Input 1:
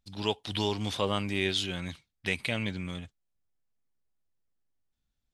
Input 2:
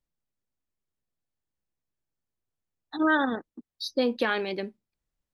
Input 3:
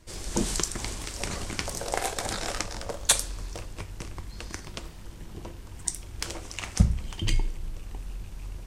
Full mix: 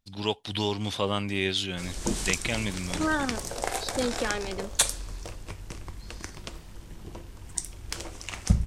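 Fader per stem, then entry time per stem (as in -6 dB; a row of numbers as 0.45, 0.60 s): +1.5, -4.0, -1.5 dB; 0.00, 0.00, 1.70 s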